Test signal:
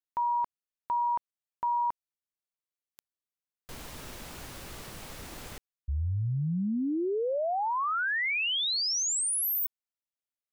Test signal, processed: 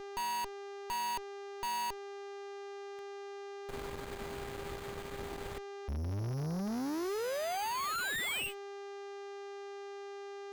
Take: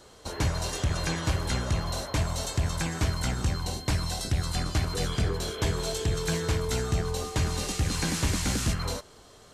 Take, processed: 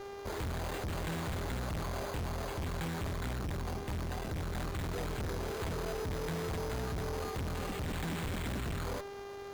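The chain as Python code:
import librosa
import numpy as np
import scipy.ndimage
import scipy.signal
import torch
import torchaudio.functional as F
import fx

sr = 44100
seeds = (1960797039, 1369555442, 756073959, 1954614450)

y = np.repeat(scipy.signal.resample_poly(x, 1, 8), 8)[:len(x)]
y = fx.dmg_buzz(y, sr, base_hz=400.0, harmonics=16, level_db=-45.0, tilt_db=-8, odd_only=False)
y = fx.tube_stage(y, sr, drive_db=39.0, bias=0.8)
y = y * librosa.db_to_amplitude(4.5)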